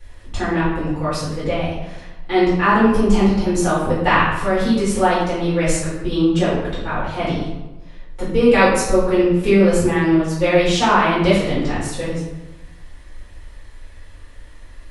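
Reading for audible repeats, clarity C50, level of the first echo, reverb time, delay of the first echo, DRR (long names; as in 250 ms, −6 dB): no echo audible, 1.0 dB, no echo audible, 1.0 s, no echo audible, −11.0 dB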